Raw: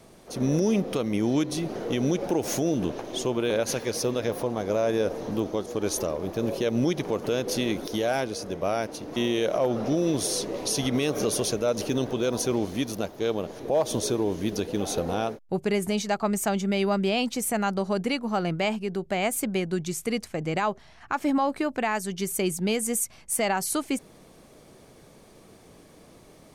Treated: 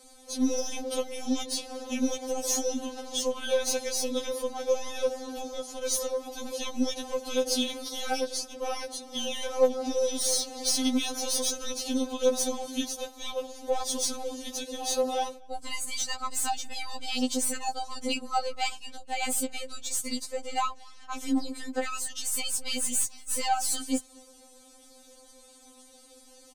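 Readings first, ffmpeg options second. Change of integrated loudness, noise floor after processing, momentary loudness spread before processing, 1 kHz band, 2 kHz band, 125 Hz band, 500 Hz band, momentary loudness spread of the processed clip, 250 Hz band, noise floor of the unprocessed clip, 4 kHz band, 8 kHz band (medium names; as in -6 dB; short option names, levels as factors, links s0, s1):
-3.0 dB, -54 dBFS, 5 LU, -2.0 dB, -5.0 dB, under -25 dB, -4.5 dB, 9 LU, -6.5 dB, -52 dBFS, +2.0 dB, +2.5 dB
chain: -filter_complex "[0:a]aresample=32000,aresample=44100,equalizer=f=125:t=o:w=1:g=7,equalizer=f=250:t=o:w=1:g=-6,equalizer=f=2000:t=o:w=1:g=-6,equalizer=f=4000:t=o:w=1:g=5,equalizer=f=8000:t=o:w=1:g=10,acrossover=split=200|4900[s0][s1][s2];[s2]asoftclip=type=tanh:threshold=0.0596[s3];[s0][s1][s3]amix=inputs=3:normalize=0,asplit=2[s4][s5];[s5]adelay=233.2,volume=0.0447,highshelf=f=4000:g=-5.25[s6];[s4][s6]amix=inputs=2:normalize=0,aeval=exprs='0.266*(cos(1*acos(clip(val(0)/0.266,-1,1)))-cos(1*PI/2))+0.0119*(cos(6*acos(clip(val(0)/0.266,-1,1)))-cos(6*PI/2))':c=same,afftfilt=real='re*3.46*eq(mod(b,12),0)':imag='im*3.46*eq(mod(b,12),0)':win_size=2048:overlap=0.75"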